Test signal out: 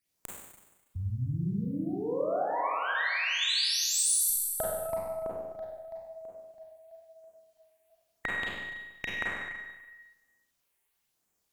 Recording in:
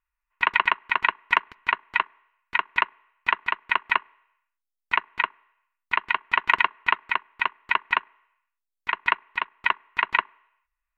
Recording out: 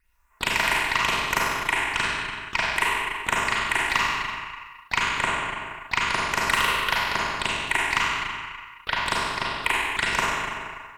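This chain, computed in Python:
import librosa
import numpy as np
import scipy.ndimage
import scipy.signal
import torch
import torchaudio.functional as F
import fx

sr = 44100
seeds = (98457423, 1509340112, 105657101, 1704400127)

y = fx.cheby_harmonics(x, sr, harmonics=(6,), levels_db=(-31,), full_scale_db=-3.5)
y = fx.phaser_stages(y, sr, stages=8, low_hz=160.0, high_hz=4700.0, hz=1.0, feedback_pct=40)
y = fx.rev_schroeder(y, sr, rt60_s=1.1, comb_ms=32, drr_db=-5.0)
y = fx.spectral_comp(y, sr, ratio=2.0)
y = y * librosa.db_to_amplitude(-3.5)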